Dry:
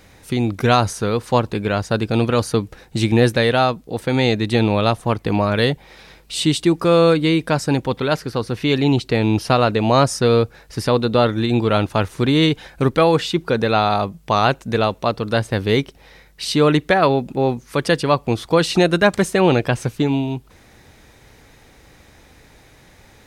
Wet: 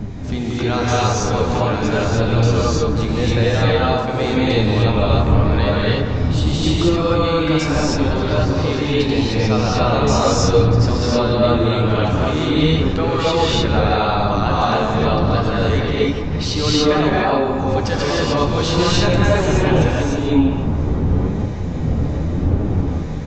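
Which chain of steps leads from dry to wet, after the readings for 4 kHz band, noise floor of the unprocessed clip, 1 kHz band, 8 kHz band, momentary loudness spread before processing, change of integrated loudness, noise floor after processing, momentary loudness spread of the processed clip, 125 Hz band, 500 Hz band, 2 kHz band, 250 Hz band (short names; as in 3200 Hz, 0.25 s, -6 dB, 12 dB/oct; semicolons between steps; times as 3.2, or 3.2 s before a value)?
+1.5 dB, -50 dBFS, +0.5 dB, +3.0 dB, 7 LU, +1.0 dB, -22 dBFS, 4 LU, +4.5 dB, 0.0 dB, -0.5 dB, +1.5 dB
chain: wind noise 160 Hz -20 dBFS; in parallel at +1 dB: negative-ratio compressor -24 dBFS, ratio -1; on the sum: non-linear reverb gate 0.33 s rising, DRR -6.5 dB; flange 0.84 Hz, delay 9.4 ms, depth 4.7 ms, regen +45%; on a send: narrowing echo 0.167 s, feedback 72%, band-pass 960 Hz, level -7 dB; on the sum: downsampling 16000 Hz; gain -6.5 dB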